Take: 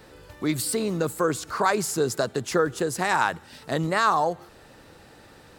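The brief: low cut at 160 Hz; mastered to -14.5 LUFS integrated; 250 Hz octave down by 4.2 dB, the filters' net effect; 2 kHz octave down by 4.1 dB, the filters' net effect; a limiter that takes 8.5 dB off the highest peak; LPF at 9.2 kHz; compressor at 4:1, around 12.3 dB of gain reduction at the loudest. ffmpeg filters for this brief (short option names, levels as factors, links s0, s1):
-af "highpass=160,lowpass=9200,equalizer=f=250:t=o:g=-5,equalizer=f=2000:t=o:g=-5.5,acompressor=threshold=0.02:ratio=4,volume=15.8,alimiter=limit=0.668:level=0:latency=1"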